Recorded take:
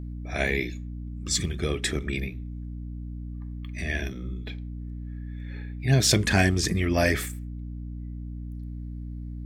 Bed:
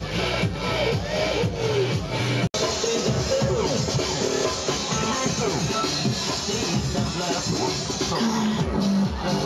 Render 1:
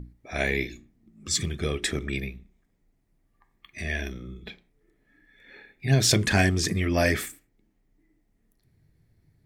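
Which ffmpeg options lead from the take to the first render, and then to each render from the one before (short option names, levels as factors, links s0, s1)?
-af "bandreject=f=60:t=h:w=6,bandreject=f=120:t=h:w=6,bandreject=f=180:t=h:w=6,bandreject=f=240:t=h:w=6,bandreject=f=300:t=h:w=6,bandreject=f=360:t=h:w=6"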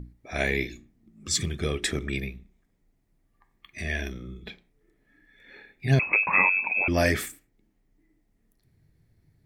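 -filter_complex "[0:a]asettb=1/sr,asplit=3[s0][s1][s2];[s0]atrim=end=5.994[s3];[s1]atrim=start=5.99:end=6.88,asetpts=PTS-STARTPTS,afade=t=in:d=0.004:c=qsin,afade=t=out:st=0.886:d=0.004:c=qsin,lowpass=f=2300:t=q:w=0.5098,lowpass=f=2300:t=q:w=0.6013,lowpass=f=2300:t=q:w=0.9,lowpass=f=2300:t=q:w=2.563,afreqshift=-2700[s4];[s2]atrim=start=6.876[s5];[s3][s4]acrossfade=d=0.004:c1=hsin:c2=qsin[s6];[s6][s5]acrossfade=d=0.004:c1=qsin:c2=hsin"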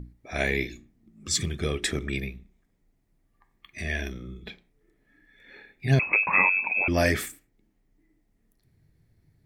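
-af anull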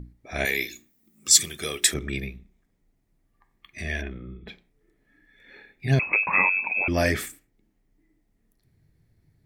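-filter_complex "[0:a]asettb=1/sr,asplit=3[s0][s1][s2];[s0]atrim=end=0.454[s3];[s1]atrim=start=0.45:end=1.94,asetpts=PTS-STARTPTS,afade=t=in:d=0.004:c=qsin,afade=t=out:st=1.486:d=0.004:c=qsin,aemphasis=mode=production:type=riaa[s4];[s2]atrim=start=1.936[s5];[s3][s4]acrossfade=d=0.004:c1=hsin:c2=qsin[s6];[s6][s5]acrossfade=d=0.004:c1=qsin:c2=hsin,asplit=3[s7][s8][s9];[s7]afade=t=out:st=4.01:d=0.02[s10];[s8]lowpass=f=2700:w=0.5412,lowpass=f=2700:w=1.3066,afade=t=in:st=4.01:d=0.02,afade=t=out:st=4.47:d=0.02[s11];[s9]afade=t=in:st=4.47:d=0.02[s12];[s10][s11][s12]amix=inputs=3:normalize=0"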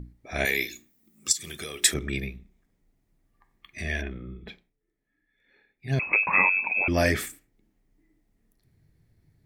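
-filter_complex "[0:a]asplit=3[s0][s1][s2];[s0]afade=t=out:st=1.31:d=0.02[s3];[s1]acompressor=threshold=0.0251:ratio=5:attack=3.2:release=140:knee=1:detection=peak,afade=t=in:st=1.31:d=0.02,afade=t=out:st=1.83:d=0.02[s4];[s2]afade=t=in:st=1.83:d=0.02[s5];[s3][s4][s5]amix=inputs=3:normalize=0,asplit=3[s6][s7][s8];[s6]atrim=end=4.77,asetpts=PTS-STARTPTS,afade=t=out:st=4.46:d=0.31:silence=0.188365[s9];[s7]atrim=start=4.77:end=5.81,asetpts=PTS-STARTPTS,volume=0.188[s10];[s8]atrim=start=5.81,asetpts=PTS-STARTPTS,afade=t=in:d=0.31:silence=0.188365[s11];[s9][s10][s11]concat=n=3:v=0:a=1"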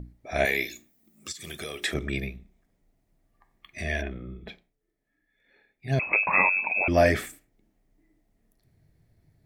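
-filter_complex "[0:a]equalizer=f=650:t=o:w=0.51:g=7,acrossover=split=3400[s0][s1];[s1]acompressor=threshold=0.0126:ratio=4:attack=1:release=60[s2];[s0][s2]amix=inputs=2:normalize=0"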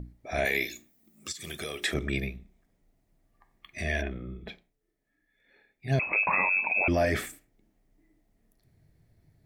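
-af "alimiter=limit=0.15:level=0:latency=1:release=23"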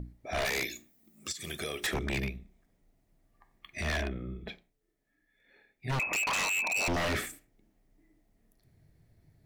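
-af "aeval=exprs='0.0562*(abs(mod(val(0)/0.0562+3,4)-2)-1)':c=same"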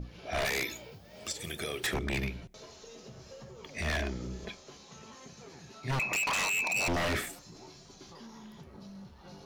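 -filter_complex "[1:a]volume=0.0473[s0];[0:a][s0]amix=inputs=2:normalize=0"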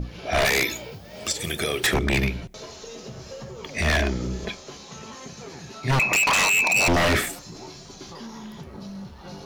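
-af "volume=3.35"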